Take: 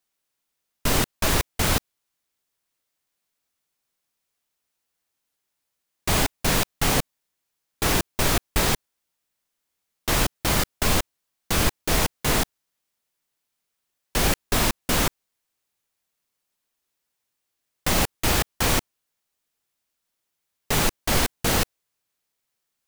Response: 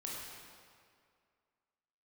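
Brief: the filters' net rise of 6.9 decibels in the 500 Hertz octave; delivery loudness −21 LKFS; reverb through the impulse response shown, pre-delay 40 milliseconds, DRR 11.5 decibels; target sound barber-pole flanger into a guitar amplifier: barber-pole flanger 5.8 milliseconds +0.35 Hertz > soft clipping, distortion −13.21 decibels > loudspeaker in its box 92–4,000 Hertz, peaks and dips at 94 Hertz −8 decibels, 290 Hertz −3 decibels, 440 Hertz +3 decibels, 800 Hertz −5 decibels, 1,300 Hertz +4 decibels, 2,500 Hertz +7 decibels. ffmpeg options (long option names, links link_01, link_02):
-filter_complex "[0:a]equalizer=frequency=500:width_type=o:gain=7.5,asplit=2[link_01][link_02];[1:a]atrim=start_sample=2205,adelay=40[link_03];[link_02][link_03]afir=irnorm=-1:irlink=0,volume=-11.5dB[link_04];[link_01][link_04]amix=inputs=2:normalize=0,asplit=2[link_05][link_06];[link_06]adelay=5.8,afreqshift=0.35[link_07];[link_05][link_07]amix=inputs=2:normalize=1,asoftclip=threshold=-19.5dB,highpass=92,equalizer=frequency=94:width_type=q:width=4:gain=-8,equalizer=frequency=290:width_type=q:width=4:gain=-3,equalizer=frequency=440:width_type=q:width=4:gain=3,equalizer=frequency=800:width_type=q:width=4:gain=-5,equalizer=frequency=1300:width_type=q:width=4:gain=4,equalizer=frequency=2500:width_type=q:width=4:gain=7,lowpass=frequency=4000:width=0.5412,lowpass=frequency=4000:width=1.3066,volume=8dB"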